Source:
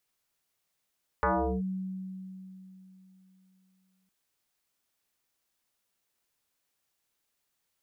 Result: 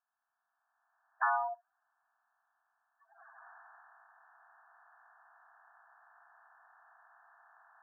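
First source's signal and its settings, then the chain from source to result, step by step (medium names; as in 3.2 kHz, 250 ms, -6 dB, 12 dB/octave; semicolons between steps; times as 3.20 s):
FM tone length 2.86 s, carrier 188 Hz, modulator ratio 1.37, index 5.4, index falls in 0.39 s linear, decay 3.43 s, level -22 dB
coarse spectral quantiser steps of 30 dB; recorder AGC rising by 16 dB/s; brick-wall FIR band-pass 650–1800 Hz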